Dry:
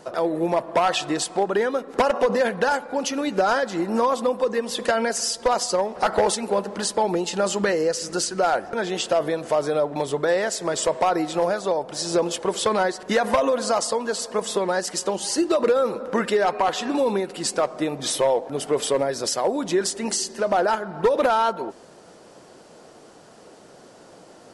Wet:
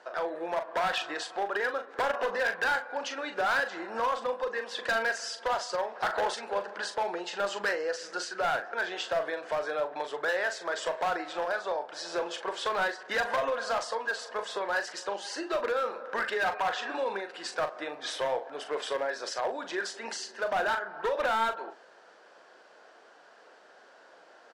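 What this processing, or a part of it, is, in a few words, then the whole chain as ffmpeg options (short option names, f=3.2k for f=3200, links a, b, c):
megaphone: -filter_complex "[0:a]highpass=610,lowpass=4k,equalizer=f=1.6k:t=o:w=0.29:g=9.5,asoftclip=type=hard:threshold=-18.5dB,asplit=2[a][b];[b]adelay=40,volume=-8.5dB[c];[a][c]amix=inputs=2:normalize=0,volume=-5.5dB"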